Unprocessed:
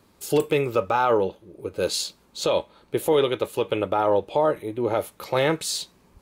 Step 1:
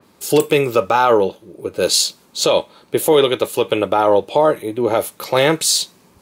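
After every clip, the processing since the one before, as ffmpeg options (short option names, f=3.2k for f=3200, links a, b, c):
-af "highpass=120,adynamicequalizer=threshold=0.00891:dfrequency=3400:dqfactor=0.7:tfrequency=3400:tqfactor=0.7:attack=5:release=100:ratio=0.375:range=3:mode=boostabove:tftype=highshelf,volume=7dB"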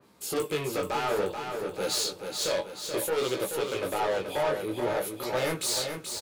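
-af "asoftclip=type=tanh:threshold=-18dB,flanger=delay=15:depth=6.6:speed=0.58,aecho=1:1:431|862|1293|1724|2155|2586:0.473|0.246|0.128|0.0665|0.0346|0.018,volume=-4.5dB"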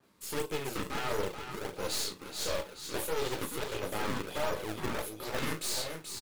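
-filter_complex "[0:a]aeval=exprs='0.126*(cos(1*acos(clip(val(0)/0.126,-1,1)))-cos(1*PI/2))+0.0316*(cos(4*acos(clip(val(0)/0.126,-1,1)))-cos(4*PI/2))':c=same,acrossover=split=760[a][b];[a]acrusher=samples=33:mix=1:aa=0.000001:lfo=1:lforange=52.8:lforate=1.5[c];[c][b]amix=inputs=2:normalize=0,asplit=2[d][e];[e]adelay=38,volume=-12dB[f];[d][f]amix=inputs=2:normalize=0,volume=-6.5dB"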